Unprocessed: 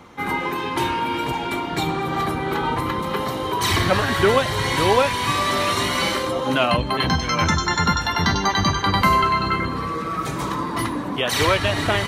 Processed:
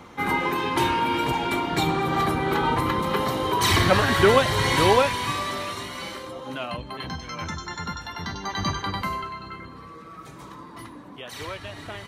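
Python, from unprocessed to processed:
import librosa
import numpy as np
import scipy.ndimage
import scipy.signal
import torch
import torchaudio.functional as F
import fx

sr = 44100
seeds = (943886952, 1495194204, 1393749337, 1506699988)

y = fx.gain(x, sr, db=fx.line((4.86, 0.0), (5.88, -13.0), (8.39, -13.0), (8.69, -6.0), (9.36, -16.5)))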